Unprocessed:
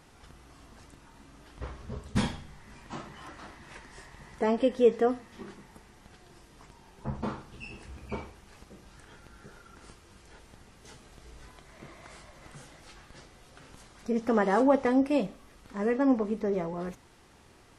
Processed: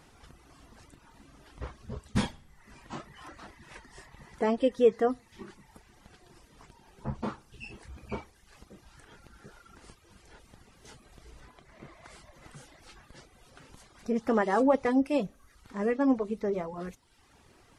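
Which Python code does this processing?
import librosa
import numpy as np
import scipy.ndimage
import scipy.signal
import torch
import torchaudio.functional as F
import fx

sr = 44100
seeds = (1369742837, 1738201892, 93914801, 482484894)

y = fx.dereverb_blind(x, sr, rt60_s=0.83)
y = fx.high_shelf(y, sr, hz=4200.0, db=-7.5, at=(11.4, 12.05))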